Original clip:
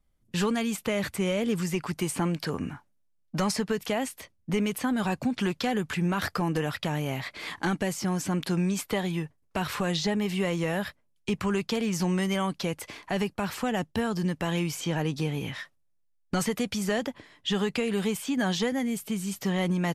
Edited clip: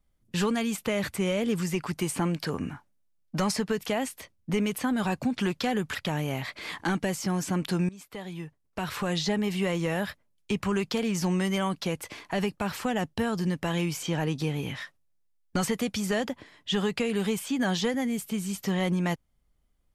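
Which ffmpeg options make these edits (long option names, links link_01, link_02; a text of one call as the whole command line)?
ffmpeg -i in.wav -filter_complex "[0:a]asplit=3[link_01][link_02][link_03];[link_01]atrim=end=5.952[link_04];[link_02]atrim=start=6.728:end=8.67,asetpts=PTS-STARTPTS,afade=type=out:start_time=1.938:duration=0.004:curve=hsin:silence=0.0891251[link_05];[link_03]atrim=start=8.67,asetpts=PTS-STARTPTS,afade=type=in:duration=1.34:silence=0.0891251[link_06];[link_05][link_06]concat=n=2:v=0:a=1[link_07];[link_04][link_07]acrossfade=duration=0.004:curve1=hsin:curve2=hsin" out.wav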